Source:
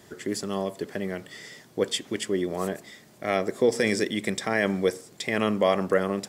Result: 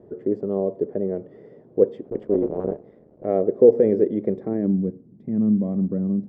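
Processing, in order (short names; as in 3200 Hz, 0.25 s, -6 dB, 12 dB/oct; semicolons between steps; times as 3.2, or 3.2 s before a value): 2.05–3.25 cycle switcher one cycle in 3, muted; low-pass sweep 480 Hz -> 220 Hz, 4.3–4.81; gain +2 dB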